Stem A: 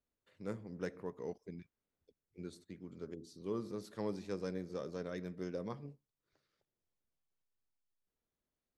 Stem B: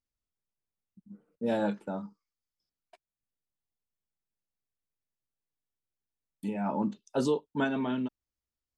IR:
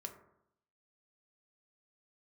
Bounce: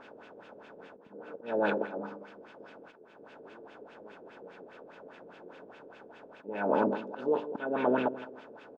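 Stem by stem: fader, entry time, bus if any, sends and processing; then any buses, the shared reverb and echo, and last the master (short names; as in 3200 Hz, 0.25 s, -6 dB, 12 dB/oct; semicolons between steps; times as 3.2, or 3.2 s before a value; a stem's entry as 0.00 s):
-13.0 dB, 0.00 s, no send, no echo send, stepped spectrum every 0.1 s; HPF 310 Hz 12 dB/oct
+0.5 dB, 0.00 s, no send, echo send -13 dB, per-bin compression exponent 0.4; tone controls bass -11 dB, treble +3 dB; auto swell 0.345 s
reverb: off
echo: feedback echo 0.163 s, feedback 33%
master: LFO low-pass sine 4.9 Hz 430–2700 Hz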